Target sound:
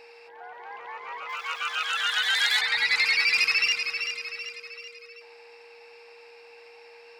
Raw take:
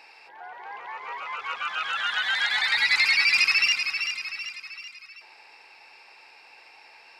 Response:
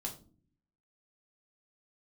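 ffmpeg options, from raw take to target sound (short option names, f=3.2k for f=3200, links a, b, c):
-filter_complex "[0:a]asoftclip=type=hard:threshold=-12dB,aeval=exprs='val(0)+0.00447*sin(2*PI*470*n/s)':c=same,asettb=1/sr,asplit=3[a][b][c];[a]atrim=end=1.294[d];[b]atrim=start=1.29:end=2.61,asetpts=PTS-STARTPTS,afade=t=in:d=0.004:c=qsin,afade=t=out:st=1.316:d=0.004:c=qsin,aemphasis=mode=production:type=riaa[e];[c]atrim=start=2.606[f];[d][e]acrossfade=d=0.004:c1=hsin:c2=qsin[g];[g][f]acrossfade=d=0.004:c1=qsin:c2=hsin,volume=-2dB"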